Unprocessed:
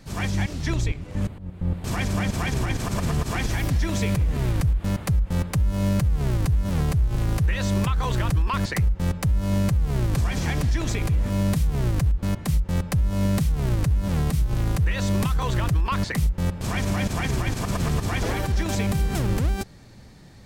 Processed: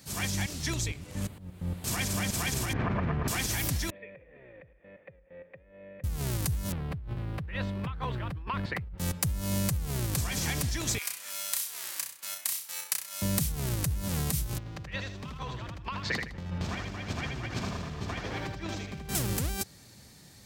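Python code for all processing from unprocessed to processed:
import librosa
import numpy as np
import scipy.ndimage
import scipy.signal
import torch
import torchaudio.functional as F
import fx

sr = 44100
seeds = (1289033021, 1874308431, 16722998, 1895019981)

y = fx.chain(x, sr, fx.lowpass(hz=2100.0, slope=24),
    fx.env_flatten(amount_pct=100), at=(2.73, 3.28))
y = fx.chain(y, sr, fx.formant_cascade(vowel='e'),
    fx.peak_eq(hz=80.0, db=-13.0, octaves=2.0), at=(3.9, 6.04))
y = fx.chain(y, sr, fx.over_compress(threshold_db=-25.0, ratio=-1.0),
    fx.air_absorb(metres=450.0), at=(6.72, 8.98))
y = fx.chain(y, sr, fx.highpass(hz=1400.0, slope=12),
    fx.room_flutter(wall_m=5.5, rt60_s=0.42),
    fx.transformer_sat(knee_hz=1100.0), at=(10.98, 13.22))
y = fx.chain(y, sr, fx.air_absorb(metres=210.0),
    fx.over_compress(threshold_db=-30.0, ratio=-1.0),
    fx.echo_feedback(ms=79, feedback_pct=27, wet_db=-4.5), at=(14.58, 19.09))
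y = scipy.signal.sosfilt(scipy.signal.butter(2, 63.0, 'highpass', fs=sr, output='sos'), y)
y = librosa.effects.preemphasis(y, coef=0.8, zi=[0.0])
y = y * 10.0 ** (6.5 / 20.0)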